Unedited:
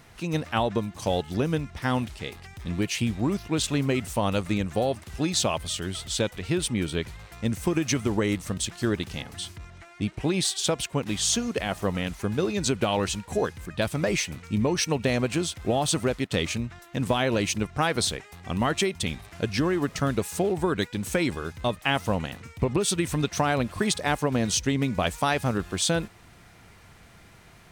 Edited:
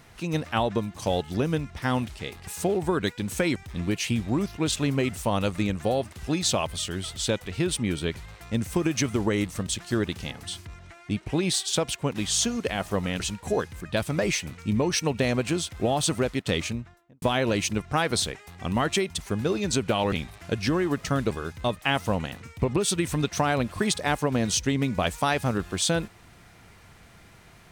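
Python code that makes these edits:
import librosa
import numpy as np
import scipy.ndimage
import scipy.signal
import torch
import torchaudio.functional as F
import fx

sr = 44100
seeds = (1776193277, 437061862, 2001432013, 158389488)

y = fx.studio_fade_out(x, sr, start_s=16.43, length_s=0.64)
y = fx.edit(y, sr, fx.move(start_s=12.11, length_s=0.94, to_s=19.03),
    fx.move(start_s=20.22, length_s=1.09, to_s=2.47), tone=tone)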